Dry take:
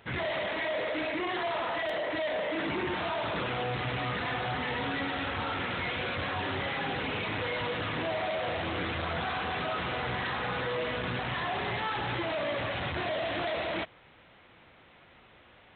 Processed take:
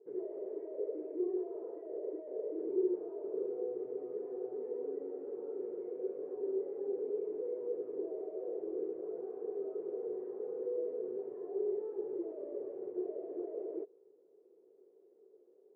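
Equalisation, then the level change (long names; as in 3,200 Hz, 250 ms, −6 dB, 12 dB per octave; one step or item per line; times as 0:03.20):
flat-topped band-pass 410 Hz, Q 4.8
high-frequency loss of the air 320 metres
+8.5 dB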